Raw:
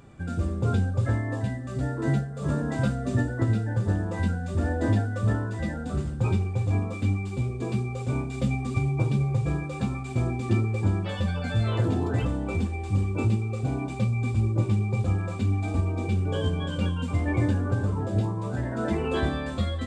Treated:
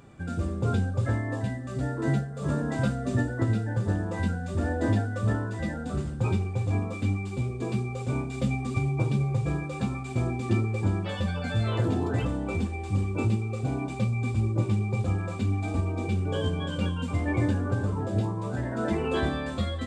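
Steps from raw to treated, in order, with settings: bass shelf 82 Hz -5.5 dB

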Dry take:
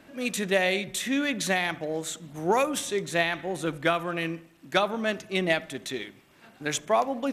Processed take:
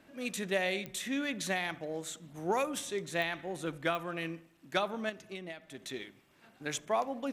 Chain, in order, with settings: 5.09–5.86 s: compression 16:1, threshold -32 dBFS, peak gain reduction 14.5 dB; clicks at 0.86/3.22/3.95 s, -17 dBFS; trim -7.5 dB

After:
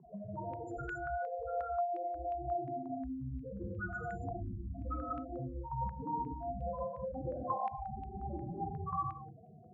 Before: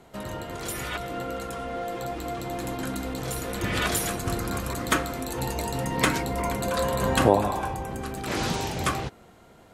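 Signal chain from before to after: loudest bins only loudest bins 1; compression 4:1, threshold -53 dBFS, peak gain reduction 22 dB; gated-style reverb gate 310 ms flat, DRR -2 dB; step-sequenced low-pass 5.6 Hz 950–2700 Hz; trim +7.5 dB

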